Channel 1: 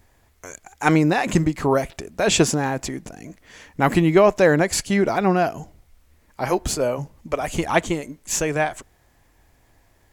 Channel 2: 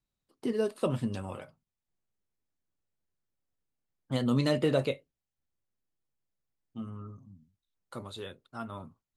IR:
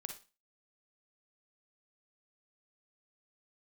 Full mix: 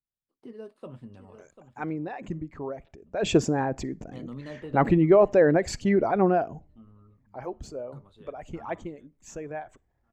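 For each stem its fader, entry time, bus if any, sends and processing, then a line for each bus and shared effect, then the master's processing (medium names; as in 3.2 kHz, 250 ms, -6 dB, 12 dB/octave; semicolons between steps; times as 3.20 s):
2.95 s -16 dB -> 3.36 s -3.5 dB -> 6.32 s -3.5 dB -> 7.05 s -14.5 dB, 0.95 s, send -16.5 dB, no echo send, resonances exaggerated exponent 1.5; peaking EQ 10 kHz -14.5 dB 0.36 oct
-12.5 dB, 0.00 s, no send, echo send -11.5 dB, treble shelf 7.5 kHz -5.5 dB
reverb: on, RT60 0.30 s, pre-delay 39 ms
echo: feedback delay 743 ms, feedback 22%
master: treble shelf 3.1 kHz -9.5 dB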